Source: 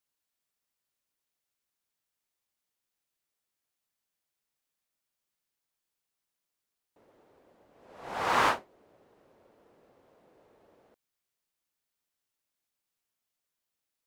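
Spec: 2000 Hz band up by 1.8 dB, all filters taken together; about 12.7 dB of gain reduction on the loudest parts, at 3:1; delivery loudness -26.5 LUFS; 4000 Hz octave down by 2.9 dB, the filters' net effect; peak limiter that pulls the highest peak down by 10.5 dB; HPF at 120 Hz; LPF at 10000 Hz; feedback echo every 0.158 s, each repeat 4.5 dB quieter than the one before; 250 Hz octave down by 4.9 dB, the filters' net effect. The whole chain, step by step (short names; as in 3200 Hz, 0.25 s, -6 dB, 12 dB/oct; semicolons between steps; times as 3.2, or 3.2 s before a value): HPF 120 Hz; LPF 10000 Hz; bell 250 Hz -6.5 dB; bell 2000 Hz +3.5 dB; bell 4000 Hz -5.5 dB; compressor 3:1, threshold -38 dBFS; limiter -34.5 dBFS; feedback echo 0.158 s, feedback 60%, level -4.5 dB; gain +22 dB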